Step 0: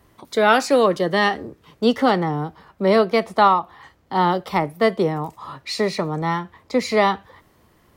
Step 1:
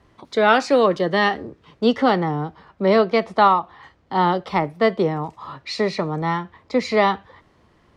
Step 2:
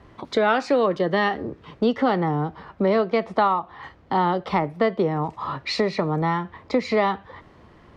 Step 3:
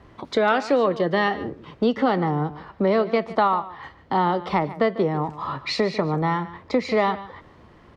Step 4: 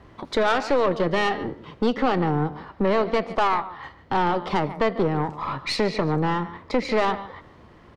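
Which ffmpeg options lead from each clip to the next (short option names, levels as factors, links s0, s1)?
-af "lowpass=5200"
-af "highshelf=f=4800:g=-10.5,acompressor=threshold=0.0355:ratio=2.5,volume=2.24"
-af "aecho=1:1:147:0.158"
-filter_complex "[0:a]asplit=5[s0][s1][s2][s3][s4];[s1]adelay=80,afreqshift=38,volume=0.0708[s5];[s2]adelay=160,afreqshift=76,volume=0.038[s6];[s3]adelay=240,afreqshift=114,volume=0.0207[s7];[s4]adelay=320,afreqshift=152,volume=0.0111[s8];[s0][s5][s6][s7][s8]amix=inputs=5:normalize=0,aeval=exprs='(tanh(7.94*val(0)+0.55)-tanh(0.55))/7.94':c=same,volume=1.41"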